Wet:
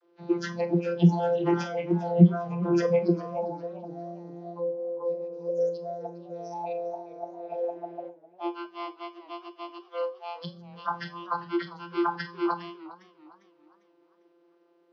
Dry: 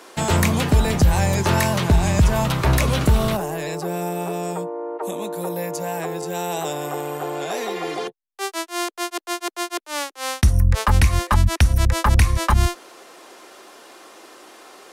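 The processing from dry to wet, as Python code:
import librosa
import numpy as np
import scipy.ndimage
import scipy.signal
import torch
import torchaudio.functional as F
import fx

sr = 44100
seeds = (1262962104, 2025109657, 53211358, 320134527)

y = fx.freq_compress(x, sr, knee_hz=1100.0, ratio=1.5)
y = fx.noise_reduce_blind(y, sr, reduce_db=25)
y = fx.dynamic_eq(y, sr, hz=850.0, q=1.4, threshold_db=-40.0, ratio=4.0, max_db=-3)
y = fx.vocoder(y, sr, bands=32, carrier='saw', carrier_hz=172.0)
y = fx.peak_eq(y, sr, hz=390.0, db=9.0, octaves=0.89)
y = fx.rev_schroeder(y, sr, rt60_s=0.31, comb_ms=29, drr_db=12.0)
y = fx.echo_warbled(y, sr, ms=403, feedback_pct=37, rate_hz=2.8, cents=114, wet_db=-17.5)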